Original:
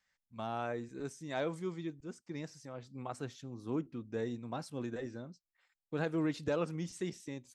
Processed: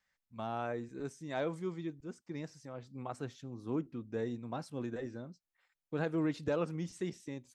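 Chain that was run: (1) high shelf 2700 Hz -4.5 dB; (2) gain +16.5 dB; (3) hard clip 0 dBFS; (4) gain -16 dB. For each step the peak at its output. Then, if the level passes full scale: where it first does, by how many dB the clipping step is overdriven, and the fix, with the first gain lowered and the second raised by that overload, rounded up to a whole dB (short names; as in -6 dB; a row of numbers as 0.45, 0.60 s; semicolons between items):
-22.5, -6.0, -6.0, -22.0 dBFS; no overload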